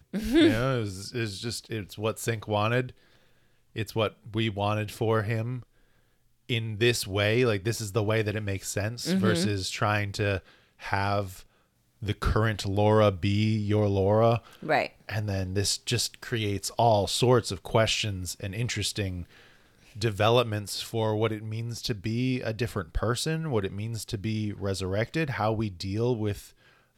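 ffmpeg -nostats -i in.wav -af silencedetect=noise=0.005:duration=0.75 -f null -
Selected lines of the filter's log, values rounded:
silence_start: 5.63
silence_end: 6.49 | silence_duration: 0.86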